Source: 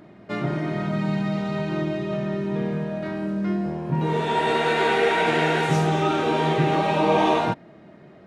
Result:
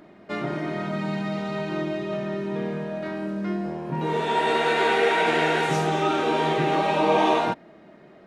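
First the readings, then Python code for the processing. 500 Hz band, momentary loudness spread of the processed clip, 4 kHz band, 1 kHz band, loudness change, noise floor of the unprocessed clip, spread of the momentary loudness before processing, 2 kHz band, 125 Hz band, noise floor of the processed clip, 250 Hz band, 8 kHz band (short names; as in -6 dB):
-0.5 dB, 10 LU, 0.0 dB, 0.0 dB, -1.0 dB, -48 dBFS, 8 LU, 0.0 dB, -6.0 dB, -50 dBFS, -3.0 dB, 0.0 dB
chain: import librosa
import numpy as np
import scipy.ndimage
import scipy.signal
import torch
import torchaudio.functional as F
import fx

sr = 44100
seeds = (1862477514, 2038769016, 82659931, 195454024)

y = fx.peak_eq(x, sr, hz=110.0, db=-10.5, octaves=1.3)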